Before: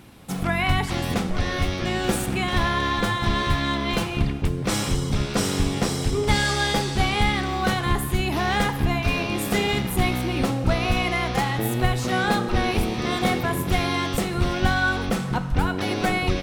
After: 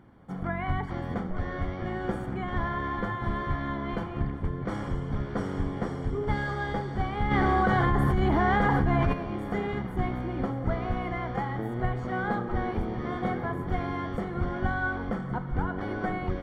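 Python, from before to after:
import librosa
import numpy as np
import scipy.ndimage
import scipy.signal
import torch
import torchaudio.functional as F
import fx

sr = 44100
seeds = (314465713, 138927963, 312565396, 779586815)

y = scipy.signal.savgol_filter(x, 41, 4, mode='constant')
y = fx.echo_feedback(y, sr, ms=1121, feedback_pct=56, wet_db=-14.5)
y = fx.env_flatten(y, sr, amount_pct=100, at=(7.3, 9.12), fade=0.02)
y = F.gain(torch.from_numpy(y), -7.0).numpy()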